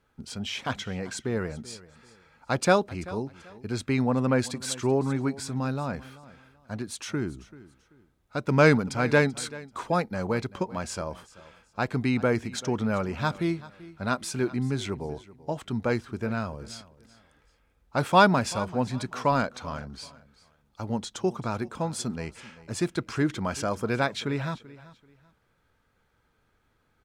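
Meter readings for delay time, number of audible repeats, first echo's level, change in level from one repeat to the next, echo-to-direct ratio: 386 ms, 2, −19.0 dB, −11.5 dB, −18.5 dB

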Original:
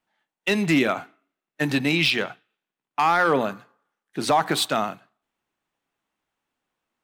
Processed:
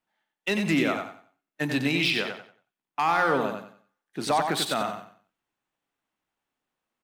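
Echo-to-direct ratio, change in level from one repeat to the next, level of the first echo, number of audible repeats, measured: −5.5 dB, −11.0 dB, −6.0 dB, 3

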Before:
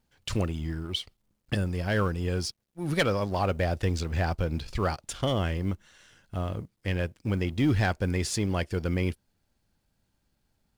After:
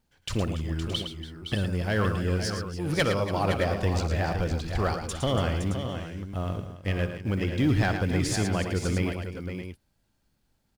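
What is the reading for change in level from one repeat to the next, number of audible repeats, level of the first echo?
repeats not evenly spaced, 5, −16.0 dB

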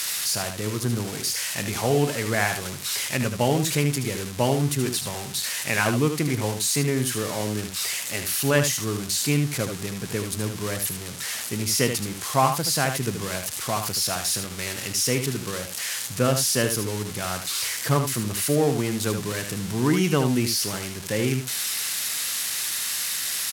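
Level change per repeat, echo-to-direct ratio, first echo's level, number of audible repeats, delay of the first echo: repeats not evenly spaced, −7.5 dB, −7.5 dB, 1, 76 ms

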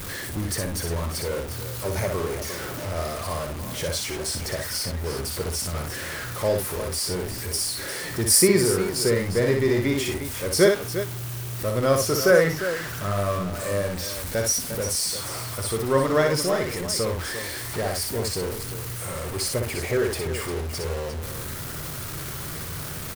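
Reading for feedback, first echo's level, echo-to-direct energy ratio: repeats not evenly spaced, −4.5 dB, −3.5 dB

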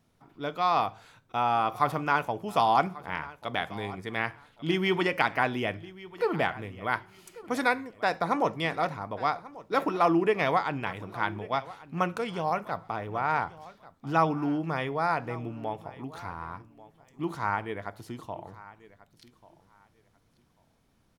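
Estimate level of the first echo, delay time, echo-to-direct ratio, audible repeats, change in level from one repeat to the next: −19.0 dB, 1,140 ms, −19.0 dB, 2, −13.5 dB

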